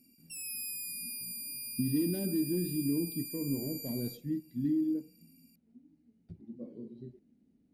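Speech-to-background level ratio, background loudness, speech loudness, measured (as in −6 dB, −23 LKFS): 4.5 dB, −39.0 LKFS, −34.5 LKFS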